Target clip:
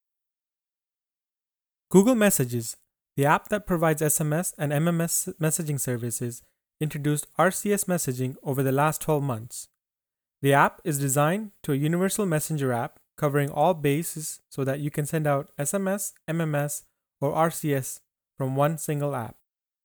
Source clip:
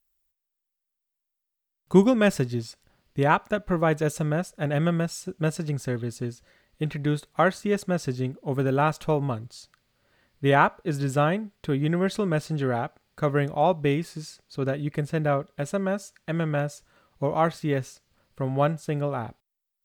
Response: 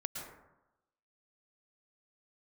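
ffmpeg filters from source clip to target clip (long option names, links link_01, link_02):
-af "agate=range=-33dB:threshold=-43dB:ratio=3:detection=peak,aexciter=amount=10.2:drive=2.7:freq=7200"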